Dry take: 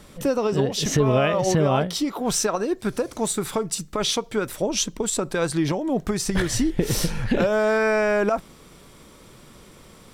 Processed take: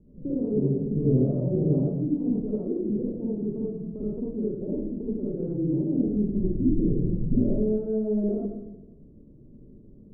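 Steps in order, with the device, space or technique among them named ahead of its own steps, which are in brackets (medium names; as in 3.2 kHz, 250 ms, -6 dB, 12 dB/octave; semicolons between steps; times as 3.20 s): next room (low-pass 380 Hz 24 dB/octave; reverberation RT60 0.95 s, pre-delay 46 ms, DRR -7 dB); trim -8 dB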